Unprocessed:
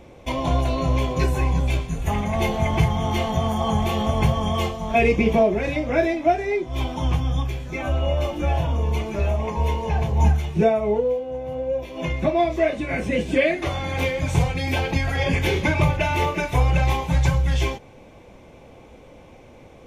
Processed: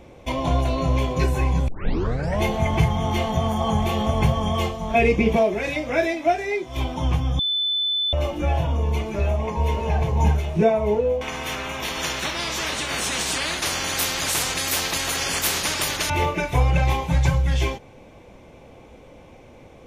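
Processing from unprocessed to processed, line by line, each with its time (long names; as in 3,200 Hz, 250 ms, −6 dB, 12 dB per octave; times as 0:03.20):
0:01.68: tape start 0.75 s
0:05.36–0:06.77: spectral tilt +2 dB per octave
0:07.39–0:08.13: beep over 3,510 Hz −20 dBFS
0:09.09–0:09.75: delay throw 600 ms, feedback 75%, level −7 dB
0:11.21–0:16.10: every bin compressed towards the loudest bin 10 to 1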